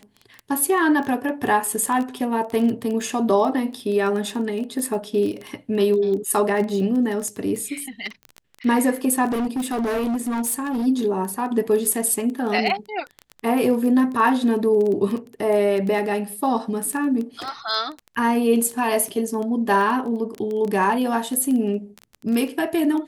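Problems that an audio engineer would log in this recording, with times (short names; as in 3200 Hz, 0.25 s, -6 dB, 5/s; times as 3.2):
crackle 12/s -25 dBFS
9.3–10.87 clipped -20.5 dBFS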